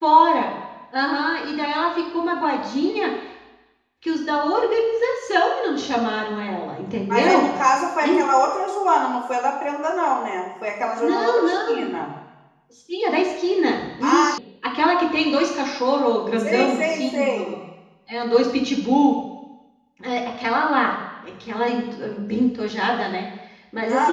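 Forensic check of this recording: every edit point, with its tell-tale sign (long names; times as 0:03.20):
0:14.38: cut off before it has died away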